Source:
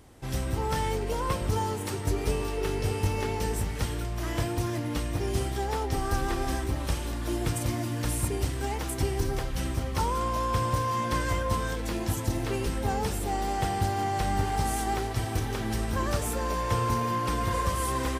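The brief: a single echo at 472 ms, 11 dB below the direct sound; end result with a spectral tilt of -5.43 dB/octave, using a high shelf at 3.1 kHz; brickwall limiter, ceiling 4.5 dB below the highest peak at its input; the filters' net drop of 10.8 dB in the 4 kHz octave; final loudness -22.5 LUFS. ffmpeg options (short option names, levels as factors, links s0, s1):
-af "highshelf=f=3100:g=-8,equalizer=f=4000:t=o:g=-8.5,alimiter=limit=0.0944:level=0:latency=1,aecho=1:1:472:0.282,volume=2.66"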